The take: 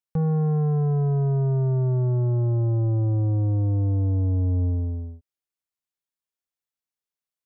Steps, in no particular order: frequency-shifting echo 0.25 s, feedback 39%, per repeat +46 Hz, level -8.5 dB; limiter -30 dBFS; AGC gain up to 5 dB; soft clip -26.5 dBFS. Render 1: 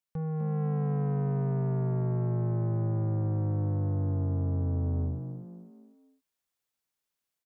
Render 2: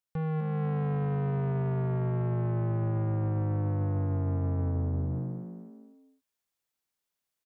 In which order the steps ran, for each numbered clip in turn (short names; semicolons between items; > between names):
limiter > AGC > soft clip > frequency-shifting echo; soft clip > frequency-shifting echo > limiter > AGC